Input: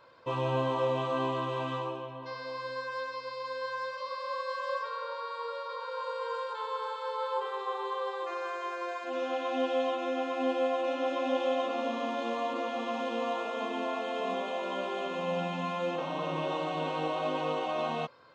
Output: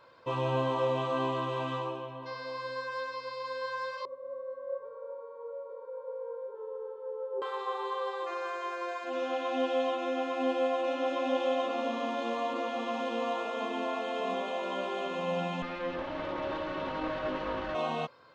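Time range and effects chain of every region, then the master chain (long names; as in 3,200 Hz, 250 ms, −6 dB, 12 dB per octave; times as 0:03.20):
0:04.05–0:07.42: low-pass with resonance 370 Hz, resonance Q 2.9 + comb filter 5.2 ms, depth 51%
0:15.62–0:17.75: lower of the sound and its delayed copy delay 3.4 ms + high-frequency loss of the air 190 metres
whole clip: no processing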